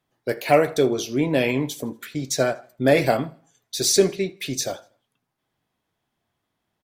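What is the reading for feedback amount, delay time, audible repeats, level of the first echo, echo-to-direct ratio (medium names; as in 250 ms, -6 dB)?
41%, 80 ms, 2, -24.0 dB, -23.0 dB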